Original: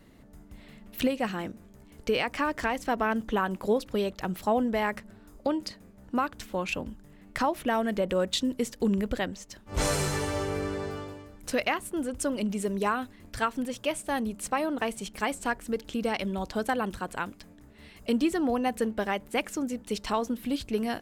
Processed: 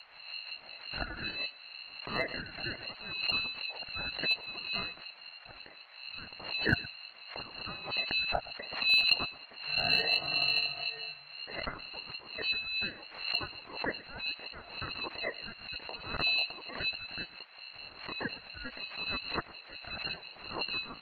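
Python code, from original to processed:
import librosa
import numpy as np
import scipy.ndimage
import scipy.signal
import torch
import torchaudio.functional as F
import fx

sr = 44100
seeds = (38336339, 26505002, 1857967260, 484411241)

p1 = fx.brickwall_bandstop(x, sr, low_hz=200.0, high_hz=2100.0)
p2 = fx.peak_eq(p1, sr, hz=260.0, db=2.5, octaves=0.85)
p3 = fx.freq_invert(p2, sr, carrier_hz=3500)
p4 = fx.phaser_stages(p3, sr, stages=12, low_hz=380.0, high_hz=1800.0, hz=0.69, feedback_pct=30)
p5 = fx.schmitt(p4, sr, flips_db=-27.5)
p6 = p4 + (p5 * librosa.db_to_amplitude(-9.0))
p7 = p6 * np.sin(2.0 * np.pi * 700.0 * np.arange(len(p6)) / sr)
p8 = p7 + fx.echo_single(p7, sr, ms=119, db=-19.5, dry=0)
p9 = fx.dmg_noise_band(p8, sr, seeds[0], low_hz=590.0, high_hz=2600.0, level_db=-69.0)
p10 = fx.pre_swell(p9, sr, db_per_s=89.0)
y = p10 * librosa.db_to_amplitude(7.5)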